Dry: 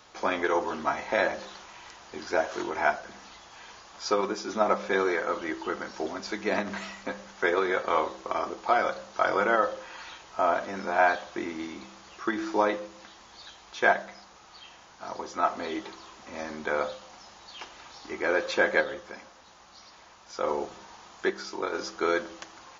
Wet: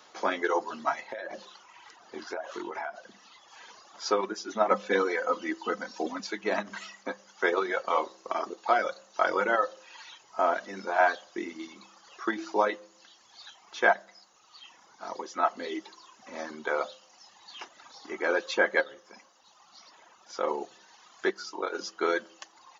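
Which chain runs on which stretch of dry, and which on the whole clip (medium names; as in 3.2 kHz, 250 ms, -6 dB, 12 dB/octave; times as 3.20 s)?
1.01–3.48 s: treble shelf 5.3 kHz -7 dB + compression 16:1, threshold -29 dBFS
4.71–6.27 s: bass shelf 370 Hz +5 dB + comb 4 ms, depth 53%
whole clip: reverb removal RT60 1.4 s; high-pass 220 Hz 12 dB/octave; band-stop 2.4 kHz, Q 20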